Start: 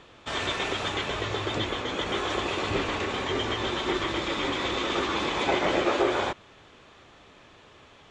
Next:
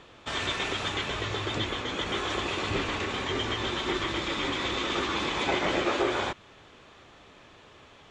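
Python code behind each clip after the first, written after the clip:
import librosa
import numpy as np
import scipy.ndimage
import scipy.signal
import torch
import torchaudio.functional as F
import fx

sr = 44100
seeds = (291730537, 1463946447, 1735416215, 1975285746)

y = fx.dynamic_eq(x, sr, hz=580.0, q=0.77, threshold_db=-38.0, ratio=4.0, max_db=-4)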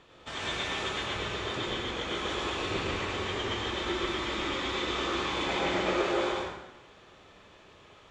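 y = fx.rev_plate(x, sr, seeds[0], rt60_s=1.0, hf_ratio=0.8, predelay_ms=80, drr_db=-2.5)
y = F.gain(torch.from_numpy(y), -6.5).numpy()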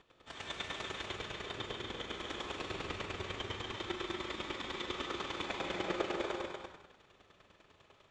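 y = fx.chopper(x, sr, hz=10.0, depth_pct=65, duty_pct=15)
y = y + 10.0 ** (-5.5 / 20.0) * np.pad(y, (int(241 * sr / 1000.0), 0))[:len(y)]
y = F.gain(torch.from_numpy(y), -4.0).numpy()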